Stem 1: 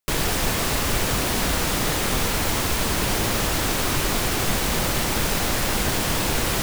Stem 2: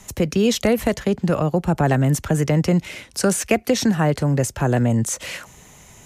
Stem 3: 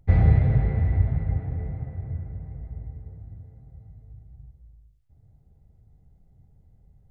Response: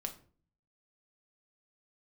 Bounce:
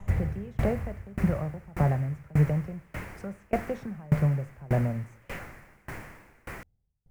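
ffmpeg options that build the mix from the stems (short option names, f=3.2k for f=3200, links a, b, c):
-filter_complex "[0:a]highshelf=f=2.7k:t=q:w=3:g=-9.5,volume=-13.5dB[a];[1:a]firequalizer=gain_entry='entry(130,0);entry(270,-13);entry(560,-6);entry(4200,-29)':delay=0.05:min_phase=1,alimiter=limit=-19dB:level=0:latency=1:release=288,volume=2.5dB,asplit=2[b][c];[c]volume=-1dB[d];[2:a]volume=-2.5dB[e];[3:a]atrim=start_sample=2205[f];[d][f]afir=irnorm=-1:irlink=0[g];[a][b][e][g]amix=inputs=4:normalize=0,aeval=exprs='val(0)*pow(10,-29*if(lt(mod(1.7*n/s,1),2*abs(1.7)/1000),1-mod(1.7*n/s,1)/(2*abs(1.7)/1000),(mod(1.7*n/s,1)-2*abs(1.7)/1000)/(1-2*abs(1.7)/1000))/20)':c=same"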